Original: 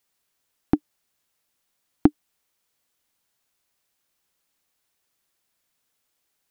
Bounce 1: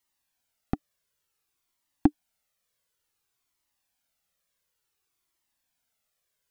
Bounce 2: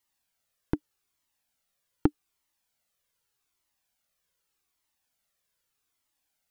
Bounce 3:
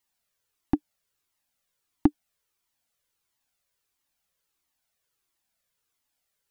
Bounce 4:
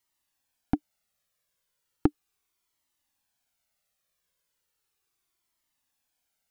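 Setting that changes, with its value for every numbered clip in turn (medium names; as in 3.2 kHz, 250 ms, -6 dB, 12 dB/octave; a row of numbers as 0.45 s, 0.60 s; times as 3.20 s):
Shepard-style flanger, rate: 0.56 Hz, 0.83 Hz, 1.5 Hz, 0.36 Hz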